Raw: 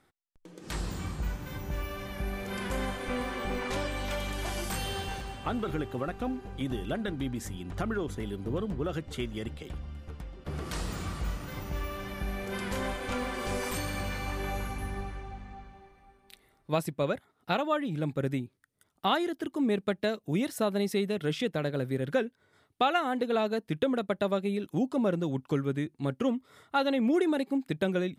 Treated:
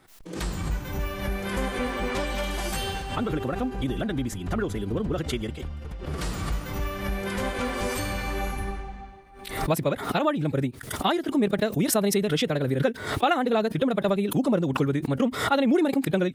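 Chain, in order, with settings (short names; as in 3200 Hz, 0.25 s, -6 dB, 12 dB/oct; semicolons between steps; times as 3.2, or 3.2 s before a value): time stretch by phase-locked vocoder 0.58×; backwards sustainer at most 77 dB/s; gain +5.5 dB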